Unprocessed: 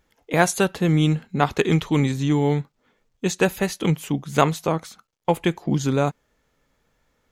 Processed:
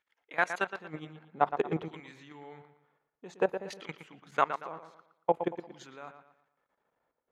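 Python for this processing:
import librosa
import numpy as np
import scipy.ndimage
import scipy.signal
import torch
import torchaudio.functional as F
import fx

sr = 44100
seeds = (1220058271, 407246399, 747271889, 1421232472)

y = fx.high_shelf(x, sr, hz=3300.0, db=-2.5)
y = fx.level_steps(y, sr, step_db=17)
y = fx.filter_lfo_bandpass(y, sr, shape='saw_down', hz=0.54, low_hz=550.0, high_hz=2200.0, q=1.1)
y = fx.echo_wet_lowpass(y, sr, ms=116, feedback_pct=36, hz=3500.0, wet_db=-9.5)
y = y * 10.0 ** (-2.0 / 20.0)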